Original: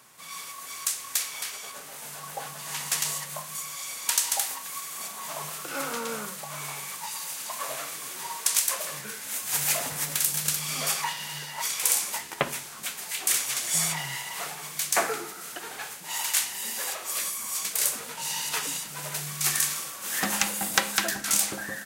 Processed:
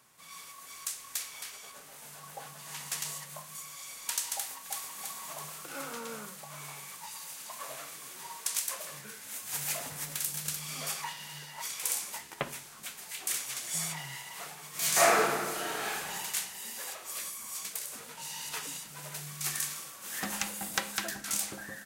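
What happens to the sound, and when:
0:04.37–0:05.00: delay throw 330 ms, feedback 55%, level −1.5 dB
0:14.70–0:16.06: thrown reverb, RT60 1.4 s, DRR −12 dB
0:17.78–0:18.41: downward compressor, threshold −27 dBFS
whole clip: low-shelf EQ 150 Hz +5 dB; level −8.5 dB

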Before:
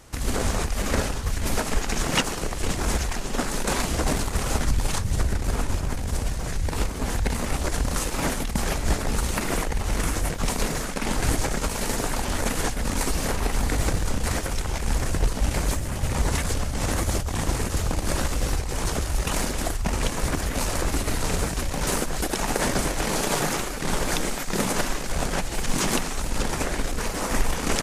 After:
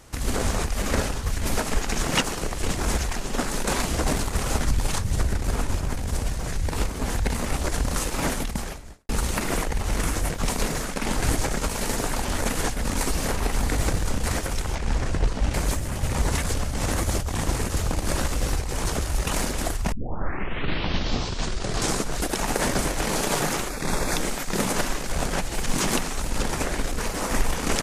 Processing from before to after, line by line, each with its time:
0:08.45–0:09.09: fade out quadratic
0:14.75–0:15.54: high-frequency loss of the air 72 metres
0:19.92: tape start 2.40 s
0:23.69–0:24.17: Butterworth band-reject 3,000 Hz, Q 5.4

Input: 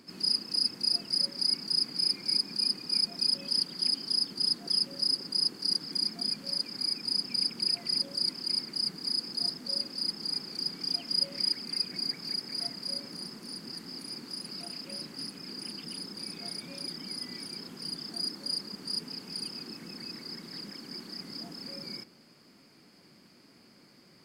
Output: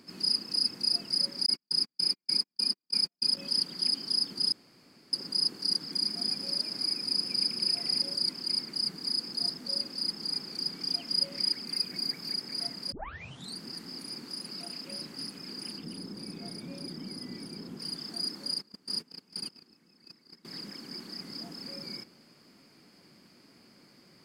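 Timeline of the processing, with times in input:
0:01.46–0:03.37: noise gate −31 dBFS, range −51 dB
0:04.52–0:05.13: fill with room tone
0:05.96–0:08.15: echo with shifted repeats 115 ms, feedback 55%, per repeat +58 Hz, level −8.5 dB
0:11.68–0:12.32: parametric band 14,000 Hz +6 dB 0.5 octaves
0:12.92: tape start 0.66 s
0:14.28–0:14.89: high-pass filter 120 Hz
0:15.78–0:17.80: tilt shelving filter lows +6 dB, about 650 Hz
0:18.54–0:20.45: noise gate −39 dBFS, range −20 dB

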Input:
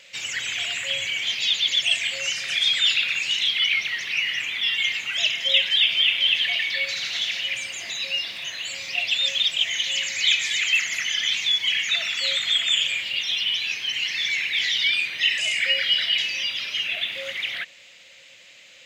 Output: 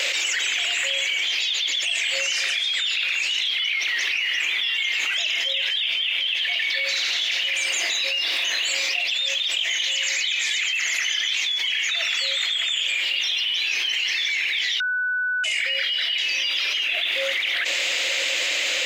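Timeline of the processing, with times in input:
0:14.80–0:15.44: beep over 1,490 Hz −15.5 dBFS
whole clip: Butterworth high-pass 280 Hz 72 dB per octave; envelope flattener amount 100%; level −9 dB

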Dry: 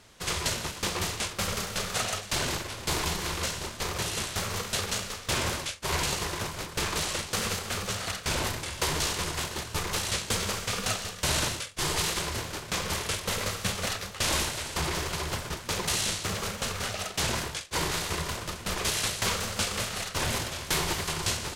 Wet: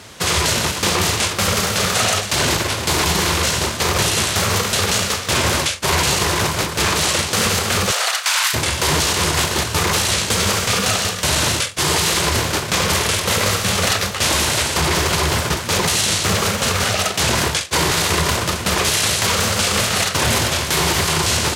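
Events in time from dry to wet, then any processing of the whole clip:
0:07.90–0:08.53: high-pass filter 440 Hz → 1,300 Hz 24 dB per octave
whole clip: high-pass filter 60 Hz 24 dB per octave; boost into a limiter +23 dB; level −6.5 dB

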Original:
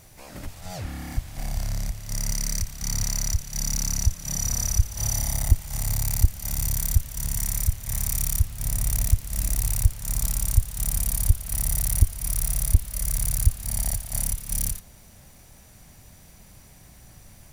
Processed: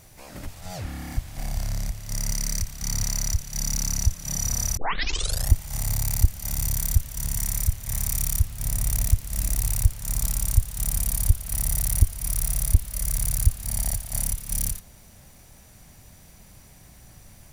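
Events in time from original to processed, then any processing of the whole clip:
0:04.77: tape start 0.74 s

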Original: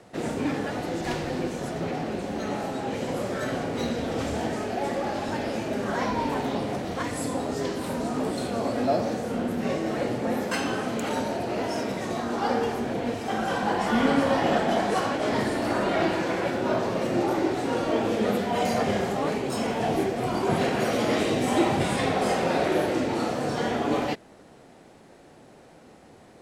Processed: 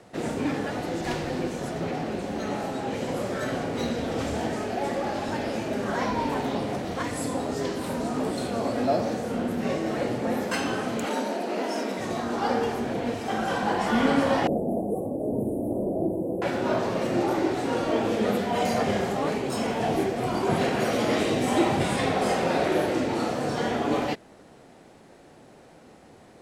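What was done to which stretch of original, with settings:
0:11.06–0:11.99: Butterworth high-pass 190 Hz
0:14.47–0:16.42: inverse Chebyshev band-stop filter 1,500–5,100 Hz, stop band 60 dB

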